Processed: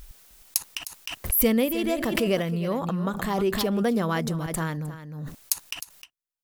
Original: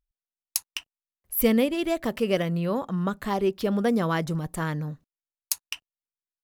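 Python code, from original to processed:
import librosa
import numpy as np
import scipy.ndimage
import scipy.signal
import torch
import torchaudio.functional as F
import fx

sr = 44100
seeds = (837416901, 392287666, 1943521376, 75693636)

p1 = fx.high_shelf(x, sr, hz=7500.0, db=4.5)
p2 = p1 + fx.echo_single(p1, sr, ms=308, db=-13.0, dry=0)
p3 = fx.pre_swell(p2, sr, db_per_s=41.0)
y = F.gain(torch.from_numpy(p3), -1.0).numpy()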